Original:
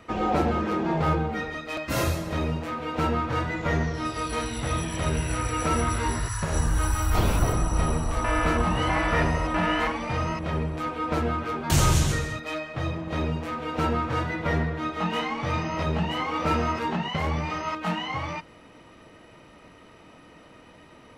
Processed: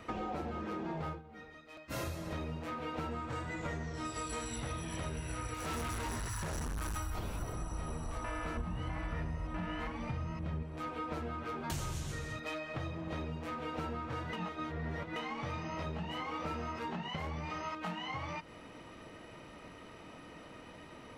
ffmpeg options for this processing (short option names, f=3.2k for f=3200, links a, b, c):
-filter_complex "[0:a]asettb=1/sr,asplit=3[a][b][c];[a]atrim=end=3.114[d];[b]atrim=start=3.11:end=4.56,asetpts=PTS-STARTPTS,afade=t=in:d=0.004:c=qsin,afade=t=out:st=1.446:d=0.004:c=qsin,equalizer=f=7.8k:w=3.4:g=12.5[e];[c]atrim=start=4.556[f];[d][e]acrossfade=d=0.004:c1=hsin:c2=qsin[g];[g][f]acrossfade=d=0.004:c1=qsin:c2=hsin,asettb=1/sr,asplit=3[h][i][j];[h]atrim=end=5.544[k];[i]atrim=start=5.54:end=6.97,asetpts=PTS-STARTPTS,afade=t=in:d=0.004:c=qsin,afade=t=out:st=1.426:d=0.004:c=qsin,asoftclip=type=hard:threshold=-29.5dB[l];[j]atrim=start=6.966[m];[k][l]acrossfade=d=0.004:c1=hsin:c2=qsin[n];[n][m]acrossfade=d=0.004:c1=qsin:c2=hsin,asettb=1/sr,asplit=3[o][p][q];[o]atrim=end=8.574[r];[p]atrim=start=8.57:end=10.63,asetpts=PTS-STARTPTS,afade=t=in:d=0.004:c=qsin,afade=t=out:st=2.056:d=0.004:c=qsin,bass=f=250:g=10,treble=f=4k:g=-2[s];[q]atrim=start=10.626[t];[r][s]acrossfade=d=0.004:c1=hsin:c2=qsin[u];[u][t]acrossfade=d=0.004:c1=qsin:c2=hsin,asplit=5[v][w][x][y][z];[v]atrim=end=1.22,asetpts=PTS-STARTPTS,afade=t=out:st=1.06:d=0.16:silence=0.112202[aa];[w]atrim=start=1.22:end=1.89,asetpts=PTS-STARTPTS,volume=-19dB[ab];[x]atrim=start=1.89:end=14.332,asetpts=PTS-STARTPTS,afade=t=in:d=0.16:silence=0.112202[ac];[y]atrim=start=14.328:end=15.162,asetpts=PTS-STARTPTS,areverse[ad];[z]atrim=start=15.158[ae];[aa][ab][ac]concat=n=3:v=0:a=1[af];[af][ad]acrossfade=d=0.004:c1=hsin:c2=hsin[ag];[ag][ae]acrossfade=d=0.004:c1=hsin:c2=hsin,acompressor=threshold=-36dB:ratio=6,volume=-1dB"